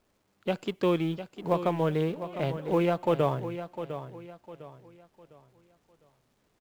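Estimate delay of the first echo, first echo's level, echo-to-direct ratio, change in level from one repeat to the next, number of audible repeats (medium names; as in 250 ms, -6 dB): 704 ms, -11.0 dB, -10.5 dB, -9.5 dB, 3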